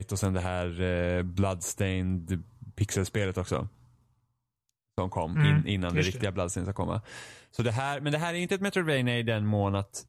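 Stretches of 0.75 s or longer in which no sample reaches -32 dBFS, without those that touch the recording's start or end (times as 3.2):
3.66–4.98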